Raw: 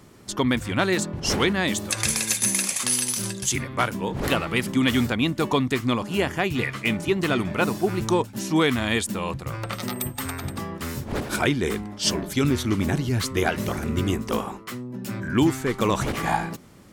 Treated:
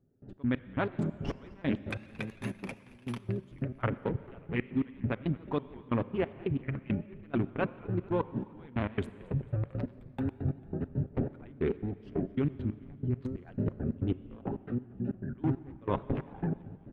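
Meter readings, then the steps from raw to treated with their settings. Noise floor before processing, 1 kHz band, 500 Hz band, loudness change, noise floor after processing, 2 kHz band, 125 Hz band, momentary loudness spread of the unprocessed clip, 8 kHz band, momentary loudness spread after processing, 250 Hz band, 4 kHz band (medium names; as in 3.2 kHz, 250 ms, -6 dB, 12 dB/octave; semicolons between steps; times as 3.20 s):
-41 dBFS, -14.0 dB, -10.0 dB, -11.0 dB, -54 dBFS, -16.5 dB, -6.0 dB, 9 LU, under -40 dB, 7 LU, -9.0 dB, -25.5 dB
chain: local Wiener filter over 41 samples; peaking EQ 5.1 kHz -10 dB 1.1 oct; comb 7.4 ms, depth 37%; reverse; compression, threshold -30 dBFS, peak gain reduction 14.5 dB; reverse; trance gate "..x.x..x.x.x." 137 bpm -24 dB; distance through air 360 m; on a send: frequency-shifting echo 223 ms, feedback 57%, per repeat -65 Hz, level -22 dB; on the sum: Schroeder reverb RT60 2.1 s, combs from 29 ms, DRR 16 dB; vibrato with a chosen wave saw up 6.8 Hz, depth 100 cents; trim +4.5 dB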